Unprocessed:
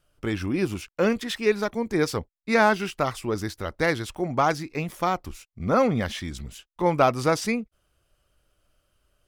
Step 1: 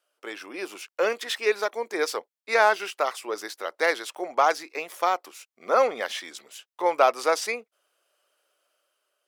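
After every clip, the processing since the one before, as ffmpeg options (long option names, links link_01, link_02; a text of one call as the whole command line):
ffmpeg -i in.wav -af "highpass=frequency=440:width=0.5412,highpass=frequency=440:width=1.3066,dynaudnorm=framelen=230:gausssize=7:maxgain=5dB,volume=-3dB" out.wav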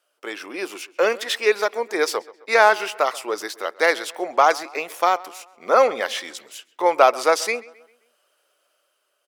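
ffmpeg -i in.wav -filter_complex "[0:a]asplit=2[link_01][link_02];[link_02]adelay=132,lowpass=frequency=3600:poles=1,volume=-20.5dB,asplit=2[link_03][link_04];[link_04]adelay=132,lowpass=frequency=3600:poles=1,volume=0.48,asplit=2[link_05][link_06];[link_06]adelay=132,lowpass=frequency=3600:poles=1,volume=0.48,asplit=2[link_07][link_08];[link_08]adelay=132,lowpass=frequency=3600:poles=1,volume=0.48[link_09];[link_01][link_03][link_05][link_07][link_09]amix=inputs=5:normalize=0,volume=5dB" out.wav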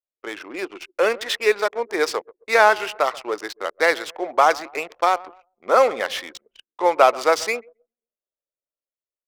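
ffmpeg -i in.wav -af "adynamicsmooth=sensitivity=8:basefreq=1500,anlmdn=0.631" out.wav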